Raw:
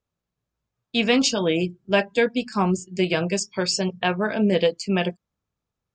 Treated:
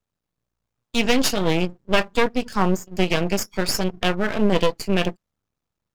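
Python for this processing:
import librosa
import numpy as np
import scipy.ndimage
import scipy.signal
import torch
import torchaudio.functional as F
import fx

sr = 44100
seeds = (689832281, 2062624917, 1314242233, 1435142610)

y = np.maximum(x, 0.0)
y = F.gain(torch.from_numpy(y), 4.5).numpy()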